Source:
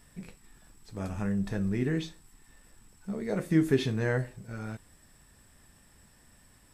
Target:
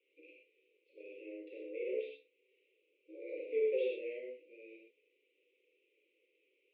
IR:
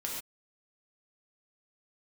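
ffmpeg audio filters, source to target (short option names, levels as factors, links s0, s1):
-filter_complex "[1:a]atrim=start_sample=2205,atrim=end_sample=6174[s0];[0:a][s0]afir=irnorm=-1:irlink=0,highpass=f=400:t=q:w=0.5412,highpass=f=400:t=q:w=1.307,lowpass=f=2300:t=q:w=0.5176,lowpass=f=2300:t=q:w=0.7071,lowpass=f=2300:t=q:w=1.932,afreqshift=120,asuperstop=centerf=1100:order=20:qfactor=0.6,volume=1.12"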